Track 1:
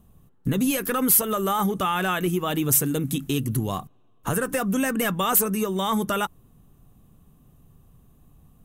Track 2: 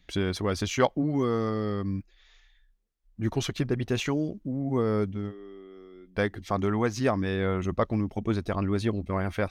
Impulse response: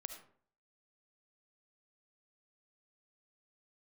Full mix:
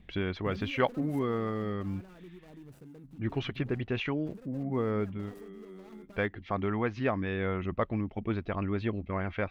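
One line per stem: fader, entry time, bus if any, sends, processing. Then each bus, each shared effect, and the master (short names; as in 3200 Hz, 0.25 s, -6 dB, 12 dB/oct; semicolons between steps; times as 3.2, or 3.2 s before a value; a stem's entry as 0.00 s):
-1.5 dB, 0.00 s, no send, median filter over 41 samples; compressor 2.5:1, threshold -39 dBFS, peak gain reduction 13 dB; auto duck -12 dB, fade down 1.45 s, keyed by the second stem
+3.0 dB, 0.00 s, no send, ladder low-pass 3300 Hz, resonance 35%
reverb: off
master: dry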